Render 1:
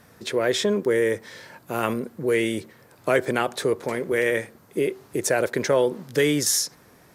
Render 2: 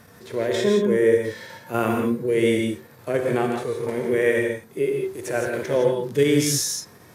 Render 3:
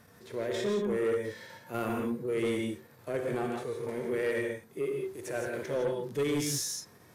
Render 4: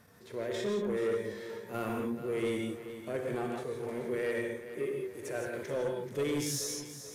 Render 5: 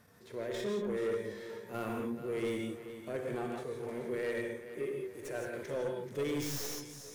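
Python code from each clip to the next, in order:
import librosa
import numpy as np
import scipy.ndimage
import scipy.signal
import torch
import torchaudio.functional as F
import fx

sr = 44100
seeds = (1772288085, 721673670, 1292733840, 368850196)

y1 = fx.level_steps(x, sr, step_db=9)
y1 = fx.hpss(y1, sr, part='percussive', gain_db=-17)
y1 = fx.rev_gated(y1, sr, seeds[0], gate_ms=190, shape='rising', drr_db=2.5)
y1 = F.gain(torch.from_numpy(y1), 8.0).numpy()
y2 = 10.0 ** (-15.0 / 20.0) * np.tanh(y1 / 10.0 ** (-15.0 / 20.0))
y2 = F.gain(torch.from_numpy(y2), -8.5).numpy()
y3 = fx.echo_feedback(y2, sr, ms=432, feedback_pct=42, wet_db=-12)
y3 = F.gain(torch.from_numpy(y3), -2.5).numpy()
y4 = fx.tracing_dist(y3, sr, depth_ms=0.077)
y4 = F.gain(torch.from_numpy(y4), -2.5).numpy()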